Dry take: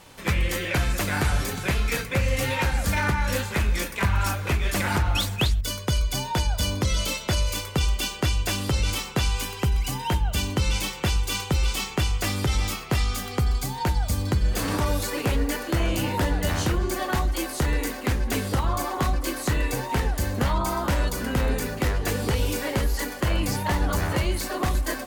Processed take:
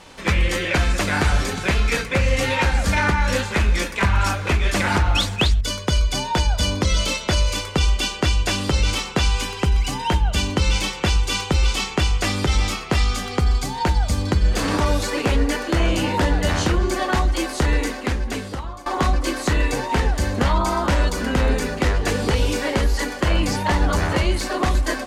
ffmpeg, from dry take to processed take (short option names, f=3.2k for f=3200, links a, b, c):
-filter_complex "[0:a]asplit=2[a][b];[a]atrim=end=18.86,asetpts=PTS-STARTPTS,afade=t=out:st=17.77:d=1.09:silence=0.0944061[c];[b]atrim=start=18.86,asetpts=PTS-STARTPTS,afade=t=in:d=0.004:c=hsin:silence=0.0944061[d];[c][d]concat=n=2:v=0:a=1,lowpass=7.5k,equalizer=f=120:t=o:w=0.42:g=-9,volume=5.5dB"